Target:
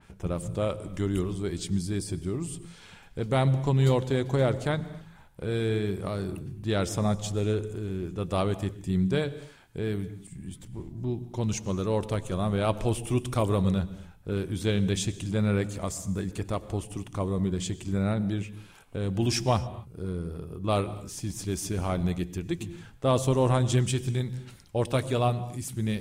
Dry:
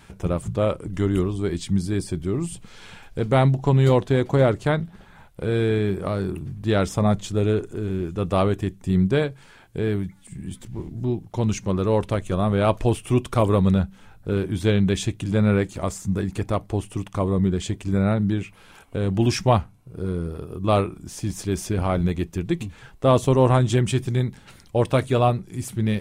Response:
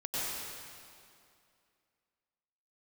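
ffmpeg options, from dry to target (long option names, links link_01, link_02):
-filter_complex "[0:a]asplit=2[link_01][link_02];[link_02]lowshelf=frequency=250:gain=11[link_03];[1:a]atrim=start_sample=2205,afade=type=out:start_time=0.33:duration=0.01,atrim=end_sample=14994[link_04];[link_03][link_04]afir=irnorm=-1:irlink=0,volume=-20dB[link_05];[link_01][link_05]amix=inputs=2:normalize=0,adynamicequalizer=threshold=0.00794:dfrequency=3100:dqfactor=0.7:tfrequency=3100:tqfactor=0.7:attack=5:release=100:ratio=0.375:range=3.5:mode=boostabove:tftype=highshelf,volume=-7.5dB"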